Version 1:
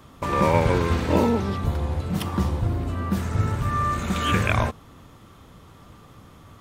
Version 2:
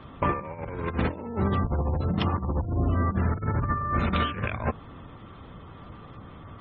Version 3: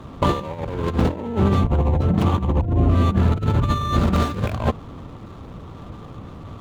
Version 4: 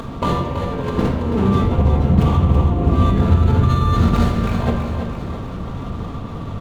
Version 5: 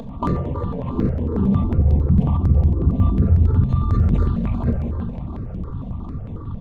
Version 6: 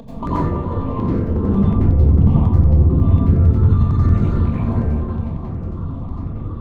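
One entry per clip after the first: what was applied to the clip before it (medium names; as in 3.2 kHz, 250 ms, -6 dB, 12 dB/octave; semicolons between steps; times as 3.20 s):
low-pass 3.9 kHz 12 dB/octave; spectral gate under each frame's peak -30 dB strong; compressor with a negative ratio -26 dBFS, ratio -0.5
median filter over 25 samples; trim +8 dB
upward compressor, threshold -22 dBFS; feedback delay 329 ms, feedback 55%, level -8 dB; simulated room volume 1200 m³, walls mixed, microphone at 1.7 m; trim -2 dB
resonances exaggerated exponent 1.5; stepped phaser 11 Hz 340–4600 Hz
plate-style reverb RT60 0.71 s, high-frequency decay 0.6×, pre-delay 75 ms, DRR -7.5 dB; trim -4.5 dB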